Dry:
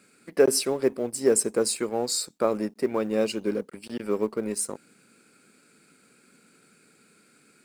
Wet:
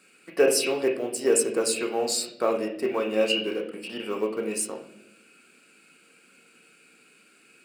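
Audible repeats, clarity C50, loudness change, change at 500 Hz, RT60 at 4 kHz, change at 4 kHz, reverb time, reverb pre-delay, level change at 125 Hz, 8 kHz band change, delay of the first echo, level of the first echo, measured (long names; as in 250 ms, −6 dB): no echo audible, 6.0 dB, +0.5 dB, +0.5 dB, 0.55 s, +3.5 dB, 0.75 s, 3 ms, can't be measured, 0.0 dB, no echo audible, no echo audible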